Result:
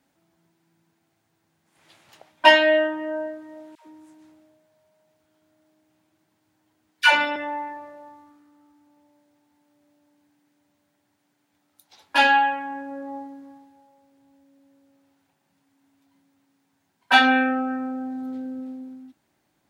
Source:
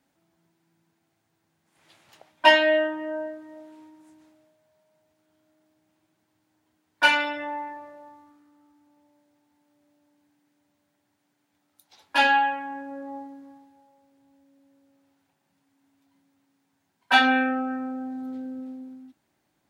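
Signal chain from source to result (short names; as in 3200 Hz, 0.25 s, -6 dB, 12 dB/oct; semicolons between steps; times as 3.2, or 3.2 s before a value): 3.75–7.36 dispersion lows, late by 0.129 s, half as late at 610 Hz; gain +2.5 dB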